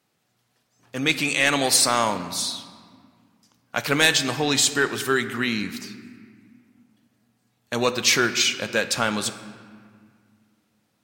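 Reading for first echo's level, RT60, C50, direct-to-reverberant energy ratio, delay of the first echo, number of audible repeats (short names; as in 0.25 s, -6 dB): none, 1.9 s, 11.5 dB, 10.0 dB, none, none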